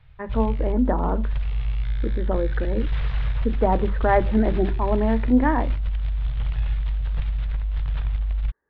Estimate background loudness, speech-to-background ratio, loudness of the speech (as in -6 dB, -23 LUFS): -27.5 LUFS, 3.0 dB, -24.5 LUFS